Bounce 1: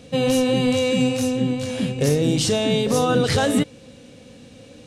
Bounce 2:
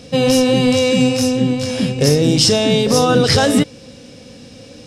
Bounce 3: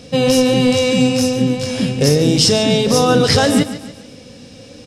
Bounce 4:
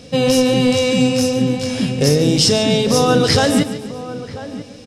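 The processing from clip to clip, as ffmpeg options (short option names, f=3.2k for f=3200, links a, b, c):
-af "equalizer=f=5.2k:w=5.9:g=12.5,volume=5.5dB"
-af "aecho=1:1:144|288|432|576:0.211|0.0951|0.0428|0.0193"
-filter_complex "[0:a]asplit=2[a][b];[b]adelay=991.3,volume=-14dB,highshelf=f=4k:g=-22.3[c];[a][c]amix=inputs=2:normalize=0,volume=-1dB"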